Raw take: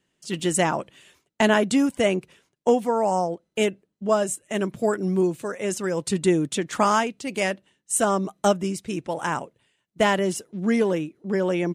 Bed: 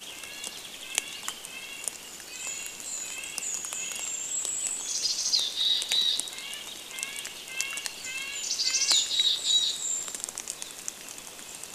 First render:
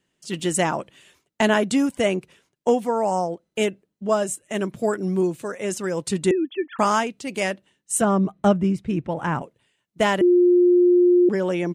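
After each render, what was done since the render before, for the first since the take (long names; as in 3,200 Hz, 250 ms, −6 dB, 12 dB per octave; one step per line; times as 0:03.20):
0:06.31–0:06.79: three sine waves on the formant tracks
0:08.01–0:09.42: bass and treble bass +10 dB, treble −15 dB
0:10.21–0:11.29: beep over 355 Hz −12 dBFS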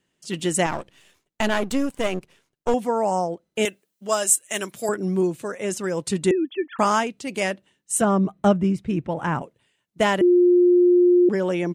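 0:00.66–0:02.74: gain on one half-wave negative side −12 dB
0:03.65–0:04.89: spectral tilt +4 dB per octave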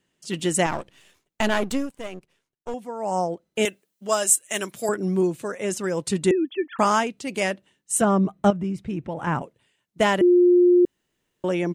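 0:01.70–0:03.20: duck −10.5 dB, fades 0.22 s
0:08.50–0:09.27: downward compressor 2 to 1, threshold −28 dBFS
0:10.85–0:11.44: fill with room tone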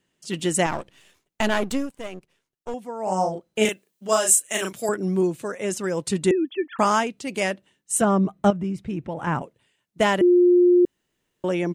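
0:03.03–0:04.73: double-tracking delay 37 ms −3 dB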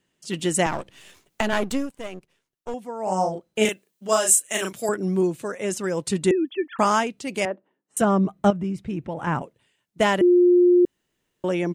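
0:00.66–0:01.53: multiband upward and downward compressor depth 70%
0:07.45–0:07.97: flat-topped band-pass 550 Hz, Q 0.58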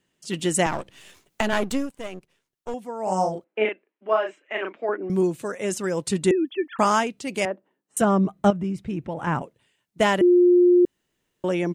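0:03.44–0:05.10: elliptic band-pass filter 280–2,400 Hz, stop band 60 dB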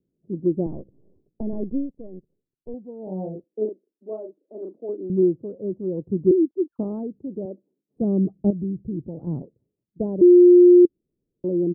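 inverse Chebyshev low-pass filter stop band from 2,000 Hz, stop band 70 dB
dynamic equaliser 340 Hz, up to +6 dB, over −31 dBFS, Q 3.7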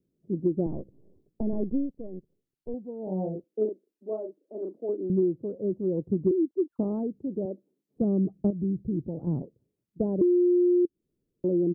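downward compressor 6 to 1, threshold −21 dBFS, peak gain reduction 11 dB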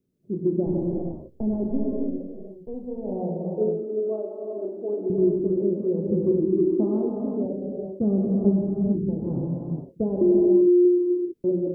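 reverb whose tail is shaped and stops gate 490 ms flat, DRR −3 dB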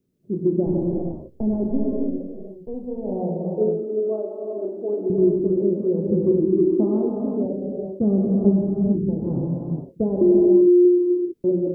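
level +3 dB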